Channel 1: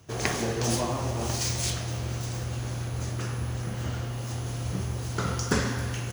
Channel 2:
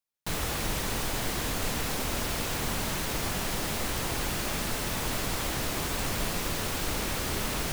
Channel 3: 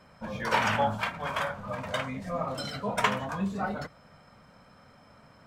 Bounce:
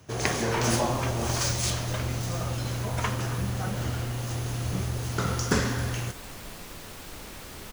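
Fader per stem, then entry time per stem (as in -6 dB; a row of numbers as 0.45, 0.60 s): +1.0, -11.0, -6.0 dB; 0.00, 0.25, 0.00 s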